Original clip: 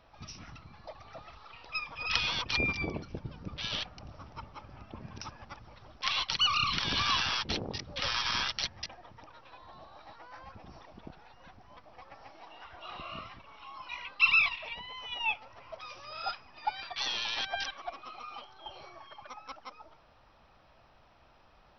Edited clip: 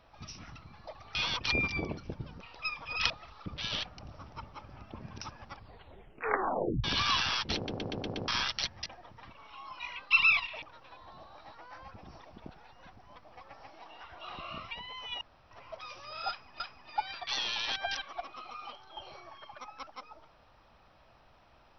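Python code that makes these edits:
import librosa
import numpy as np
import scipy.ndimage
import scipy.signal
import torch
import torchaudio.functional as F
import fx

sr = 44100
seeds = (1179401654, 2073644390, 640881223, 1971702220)

y = fx.edit(x, sr, fx.swap(start_s=1.15, length_s=0.36, other_s=2.2, other_length_s=1.26),
    fx.tape_stop(start_s=5.5, length_s=1.34),
    fx.stutter_over(start_s=7.56, slice_s=0.12, count=6),
    fx.move(start_s=13.32, length_s=1.39, to_s=9.23),
    fx.room_tone_fill(start_s=15.21, length_s=0.3),
    fx.repeat(start_s=16.29, length_s=0.31, count=2), tone=tone)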